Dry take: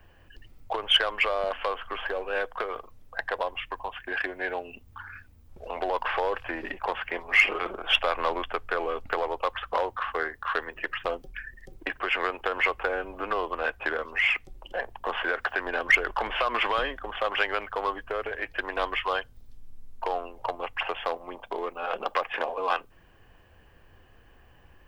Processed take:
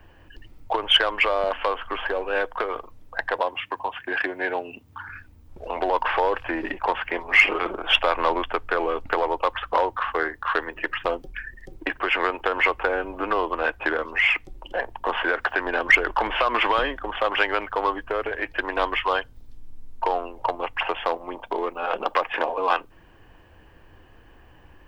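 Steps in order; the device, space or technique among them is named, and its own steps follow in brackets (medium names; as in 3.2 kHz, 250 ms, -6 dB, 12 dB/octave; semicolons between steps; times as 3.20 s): 3.36–5.09 s: high-pass 85 Hz 24 dB/octave; inside a helmet (treble shelf 5.6 kHz -4.5 dB; small resonant body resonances 310/920 Hz, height 6 dB); trim +4.5 dB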